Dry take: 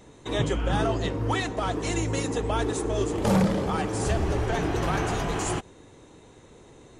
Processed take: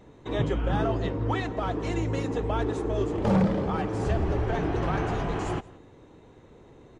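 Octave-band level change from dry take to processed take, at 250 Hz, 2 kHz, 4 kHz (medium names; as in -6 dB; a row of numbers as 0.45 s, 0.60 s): -0.5 dB, -4.0 dB, -7.5 dB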